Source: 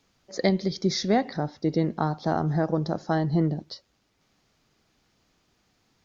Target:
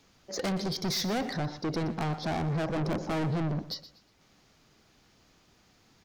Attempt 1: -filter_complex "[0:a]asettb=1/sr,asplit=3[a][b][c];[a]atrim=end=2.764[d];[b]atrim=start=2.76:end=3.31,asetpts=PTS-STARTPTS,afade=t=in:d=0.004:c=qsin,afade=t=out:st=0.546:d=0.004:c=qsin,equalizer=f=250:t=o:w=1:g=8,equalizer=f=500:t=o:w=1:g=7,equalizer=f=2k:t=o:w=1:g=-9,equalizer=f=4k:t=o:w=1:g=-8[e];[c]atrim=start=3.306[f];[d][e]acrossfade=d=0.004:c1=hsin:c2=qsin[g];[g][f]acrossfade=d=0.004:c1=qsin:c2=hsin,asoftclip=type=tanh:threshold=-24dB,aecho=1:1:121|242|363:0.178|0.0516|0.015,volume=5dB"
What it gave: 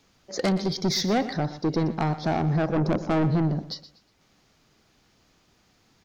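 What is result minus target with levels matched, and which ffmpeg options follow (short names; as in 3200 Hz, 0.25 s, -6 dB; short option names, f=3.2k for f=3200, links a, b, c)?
soft clip: distortion -4 dB
-filter_complex "[0:a]asettb=1/sr,asplit=3[a][b][c];[a]atrim=end=2.764[d];[b]atrim=start=2.76:end=3.31,asetpts=PTS-STARTPTS,afade=t=in:d=0.004:c=qsin,afade=t=out:st=0.546:d=0.004:c=qsin,equalizer=f=250:t=o:w=1:g=8,equalizer=f=500:t=o:w=1:g=7,equalizer=f=2k:t=o:w=1:g=-9,equalizer=f=4k:t=o:w=1:g=-8[e];[c]atrim=start=3.306[f];[d][e]acrossfade=d=0.004:c1=hsin:c2=qsin[g];[g][f]acrossfade=d=0.004:c1=qsin:c2=hsin,asoftclip=type=tanh:threshold=-33dB,aecho=1:1:121|242|363:0.178|0.0516|0.015,volume=5dB"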